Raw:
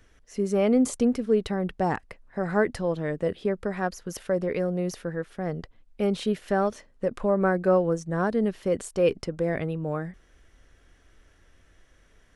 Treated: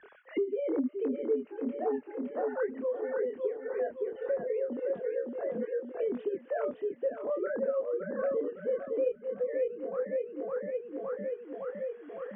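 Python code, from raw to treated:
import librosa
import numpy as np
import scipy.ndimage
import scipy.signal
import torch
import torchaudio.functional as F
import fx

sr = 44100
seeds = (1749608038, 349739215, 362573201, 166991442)

y = fx.sine_speech(x, sr)
y = scipy.signal.sosfilt(scipy.signal.butter(2, 2800.0, 'lowpass', fs=sr, output='sos'), y)
y = fx.tilt_shelf(y, sr, db=5.5, hz=710.0)
y = fx.echo_feedback(y, sr, ms=562, feedback_pct=41, wet_db=-5)
y = fx.chorus_voices(y, sr, voices=2, hz=0.18, base_ms=25, depth_ms=4.8, mix_pct=40)
y = fx.band_squash(y, sr, depth_pct=100)
y = F.gain(torch.from_numpy(y), -6.5).numpy()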